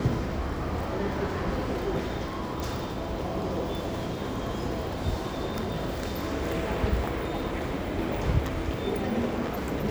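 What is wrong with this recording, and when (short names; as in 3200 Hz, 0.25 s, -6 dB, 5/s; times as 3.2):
2.6 pop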